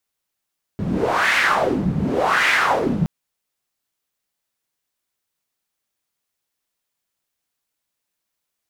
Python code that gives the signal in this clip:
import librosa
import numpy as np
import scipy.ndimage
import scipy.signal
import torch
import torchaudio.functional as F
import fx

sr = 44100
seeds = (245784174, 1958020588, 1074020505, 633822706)

y = fx.wind(sr, seeds[0], length_s=2.27, low_hz=160.0, high_hz=2000.0, q=3.4, gusts=2, swing_db=4.5)